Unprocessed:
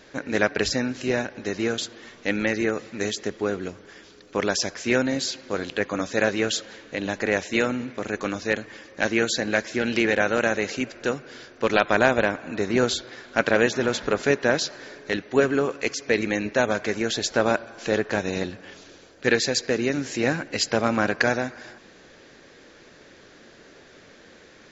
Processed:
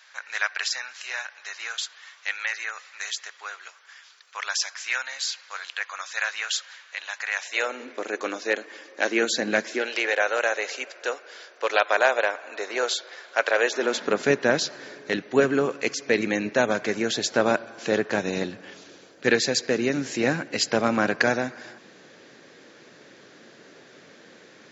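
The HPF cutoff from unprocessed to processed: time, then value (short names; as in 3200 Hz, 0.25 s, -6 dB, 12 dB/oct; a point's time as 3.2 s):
HPF 24 dB/oct
7.35 s 1000 Hz
7.87 s 320 Hz
9.05 s 320 Hz
9.57 s 140 Hz
9.91 s 490 Hz
13.58 s 490 Hz
14.31 s 120 Hz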